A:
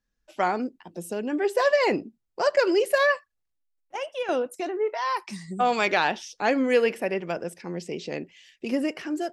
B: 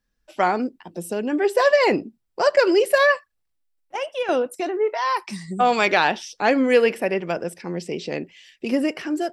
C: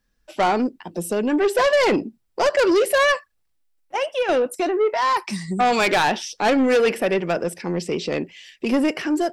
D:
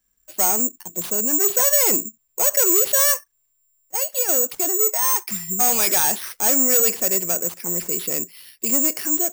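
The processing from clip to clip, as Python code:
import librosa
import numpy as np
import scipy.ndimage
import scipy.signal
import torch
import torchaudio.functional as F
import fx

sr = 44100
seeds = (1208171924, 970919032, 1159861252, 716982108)

y1 = fx.notch(x, sr, hz=6600.0, q=12.0)
y1 = y1 * 10.0 ** (4.5 / 20.0)
y2 = 10.0 ** (-18.5 / 20.0) * np.tanh(y1 / 10.0 ** (-18.5 / 20.0))
y2 = y2 * 10.0 ** (5.0 / 20.0)
y3 = (np.kron(y2[::6], np.eye(6)[0]) * 6)[:len(y2)]
y3 = y3 * 10.0 ** (-7.5 / 20.0)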